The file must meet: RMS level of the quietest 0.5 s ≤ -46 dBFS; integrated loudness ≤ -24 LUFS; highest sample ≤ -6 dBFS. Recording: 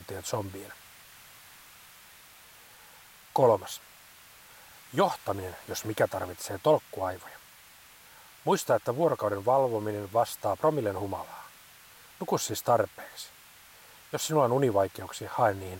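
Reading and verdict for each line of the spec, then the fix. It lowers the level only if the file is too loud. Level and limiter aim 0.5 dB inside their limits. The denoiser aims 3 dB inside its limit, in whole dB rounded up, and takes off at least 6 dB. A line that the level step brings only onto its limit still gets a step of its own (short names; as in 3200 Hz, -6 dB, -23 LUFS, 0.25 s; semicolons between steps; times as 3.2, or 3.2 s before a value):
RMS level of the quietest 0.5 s -54 dBFS: OK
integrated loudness -29.0 LUFS: OK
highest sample -12.0 dBFS: OK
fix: none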